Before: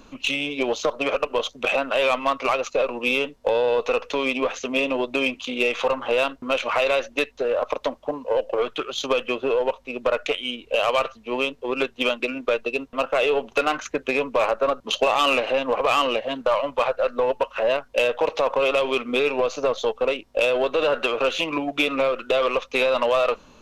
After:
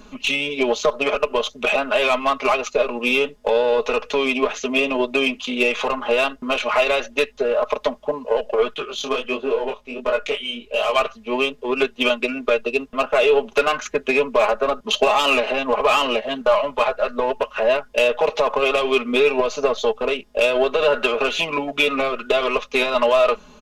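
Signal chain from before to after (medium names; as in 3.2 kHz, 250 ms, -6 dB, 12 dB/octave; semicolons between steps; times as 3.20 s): comb 4.8 ms, depth 79%; 8.74–10.96 s: chorus 1.4 Hz, delay 18.5 ms, depth 7.5 ms; trim +1.5 dB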